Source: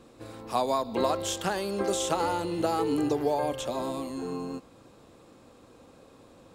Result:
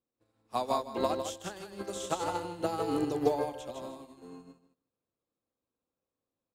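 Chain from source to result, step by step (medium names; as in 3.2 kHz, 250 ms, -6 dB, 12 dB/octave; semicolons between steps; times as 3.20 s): 1.12–1.95 s: peaking EQ 1.7 kHz -> 380 Hz -4.5 dB 1 oct; feedback delay 155 ms, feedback 28%, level -5 dB; upward expansion 2.5:1, over -47 dBFS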